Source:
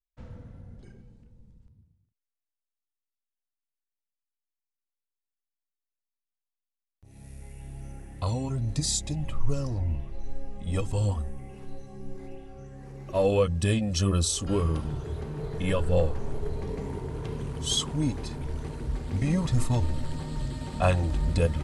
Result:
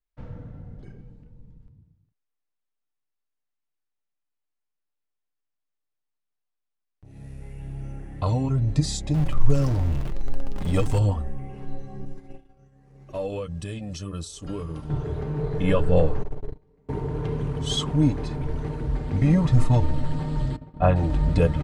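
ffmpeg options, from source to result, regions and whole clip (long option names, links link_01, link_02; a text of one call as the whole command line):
ffmpeg -i in.wav -filter_complex "[0:a]asettb=1/sr,asplit=3[link_01][link_02][link_03];[link_01]atrim=end=9.144[link_04];[link_02]atrim=start=9.14:end=10.99,asetpts=PTS-STARTPTS,afade=type=in:duration=0.004:curve=qsin,afade=type=out:start_time=1.846:duration=0.004:curve=qsin,aeval=exprs='val(0)+0.5*0.0178*sgn(val(0))':channel_layout=same,highshelf=frequency=3700:gain=8[link_05];[link_03]atrim=start=10.986[link_06];[link_04][link_05]acrossfade=duration=0.004:curve1=hsin:curve2=qsin[link_07];[link_07][link_06]acrossfade=duration=0.004:curve1=qsin:curve2=hsin,asettb=1/sr,asplit=3[link_08][link_09][link_10];[link_08]atrim=end=12.054[link_11];[link_09]atrim=start=12.05:end=14.9,asetpts=PTS-STARTPTS,afade=type=in:duration=0.004:curve=qsin,afade=type=out:start_time=2.846:duration=0.004:curve=qsin,highshelf=frequency=4200:gain=12,acompressor=threshold=-31dB:ratio=6:attack=3.2:release=140:knee=1:detection=peak,agate=range=-33dB:threshold=-32dB:ratio=3:release=100:detection=peak[link_12];[link_10]atrim=start=14.896[link_13];[link_11][link_12]acrossfade=duration=0.004:curve1=hsin:curve2=qsin[link_14];[link_14][link_13]acrossfade=duration=0.004:curve1=qsin:curve2=hsin,asettb=1/sr,asplit=3[link_15][link_16][link_17];[link_15]atrim=end=16.234[link_18];[link_16]atrim=start=16.23:end=16.89,asetpts=PTS-STARTPTS,afade=type=in:duration=0.004:curve=qsin,afade=type=out:start_time=0.656:duration=0.004:curve=qsin,agate=range=-34dB:threshold=-27dB:ratio=16:release=100:detection=peak,asoftclip=type=hard:threshold=-28dB[link_19];[link_17]atrim=start=16.886[link_20];[link_18][link_19]acrossfade=duration=0.004:curve1=hsin:curve2=qsin[link_21];[link_21][link_20]acrossfade=duration=0.004:curve1=qsin:curve2=hsin,asettb=1/sr,asplit=3[link_22][link_23][link_24];[link_22]atrim=end=20.564[link_25];[link_23]atrim=start=20.56:end=20.96,asetpts=PTS-STARTPTS,afade=type=in:duration=0.004:curve=qsin,afade=type=out:start_time=0.396:duration=0.004:curve=qsin,lowpass=frequency=1200:poles=1,agate=range=-33dB:threshold=-26dB:ratio=3:release=100:detection=peak[link_26];[link_24]atrim=start=20.956[link_27];[link_25][link_26]acrossfade=duration=0.004:curve1=hsin:curve2=qsin[link_28];[link_28][link_27]acrossfade=duration=0.004:curve1=qsin:curve2=hsin,lowpass=frequency=1900:poles=1,aecho=1:1:6.7:0.35,volume=5.5dB" out.wav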